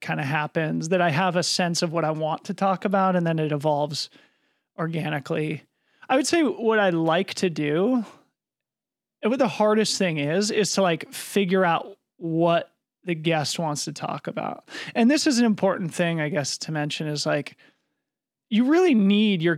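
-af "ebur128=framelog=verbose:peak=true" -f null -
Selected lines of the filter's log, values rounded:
Integrated loudness:
  I:         -23.3 LUFS
  Threshold: -33.8 LUFS
Loudness range:
  LRA:         3.2 LU
  Threshold: -44.3 LUFS
  LRA low:   -26.1 LUFS
  LRA high:  -23.0 LUFS
True peak:
  Peak:       -7.3 dBFS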